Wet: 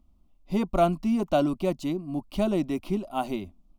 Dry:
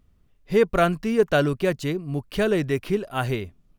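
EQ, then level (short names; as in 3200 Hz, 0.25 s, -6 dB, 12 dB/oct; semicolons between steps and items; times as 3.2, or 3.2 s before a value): high shelf 2600 Hz -8 dB; fixed phaser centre 450 Hz, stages 6; +1.5 dB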